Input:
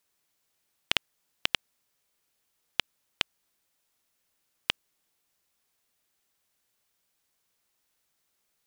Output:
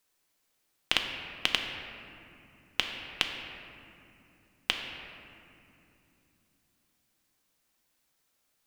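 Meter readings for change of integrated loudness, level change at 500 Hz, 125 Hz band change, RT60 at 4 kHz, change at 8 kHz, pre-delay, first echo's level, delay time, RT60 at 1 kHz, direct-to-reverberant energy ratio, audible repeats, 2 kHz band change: 0.0 dB, +2.0 dB, +2.0 dB, 1.6 s, +1.0 dB, 4 ms, none, none, 2.6 s, 2.5 dB, none, +2.0 dB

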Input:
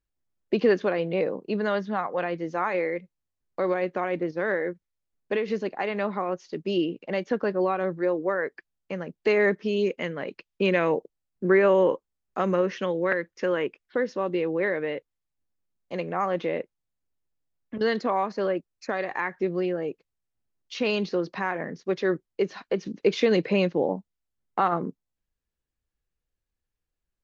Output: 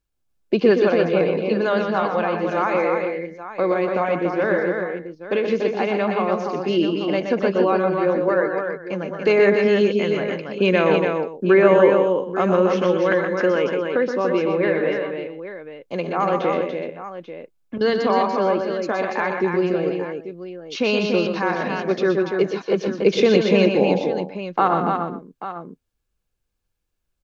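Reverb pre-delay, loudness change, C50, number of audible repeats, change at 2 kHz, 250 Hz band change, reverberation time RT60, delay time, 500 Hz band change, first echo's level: none, +6.5 dB, none, 4, +5.5 dB, +7.0 dB, none, 0.122 s, +7.5 dB, -6.5 dB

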